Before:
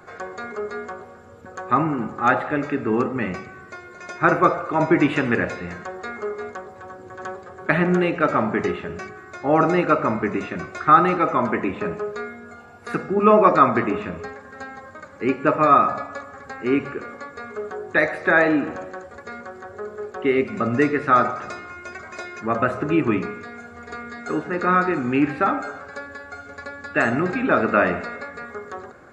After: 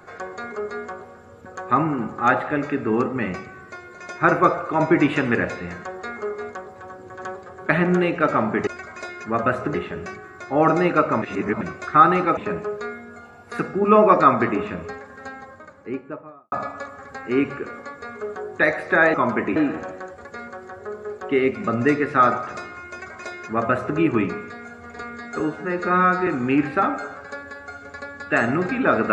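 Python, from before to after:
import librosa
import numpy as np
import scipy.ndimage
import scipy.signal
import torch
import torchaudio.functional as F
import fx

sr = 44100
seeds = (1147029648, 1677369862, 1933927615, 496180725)

y = fx.studio_fade_out(x, sr, start_s=14.56, length_s=1.31)
y = fx.edit(y, sr, fx.reverse_span(start_s=10.15, length_s=0.39),
    fx.move(start_s=11.3, length_s=0.42, to_s=18.49),
    fx.duplicate(start_s=21.83, length_s=1.07, to_s=8.67),
    fx.stretch_span(start_s=24.33, length_s=0.58, factor=1.5), tone=tone)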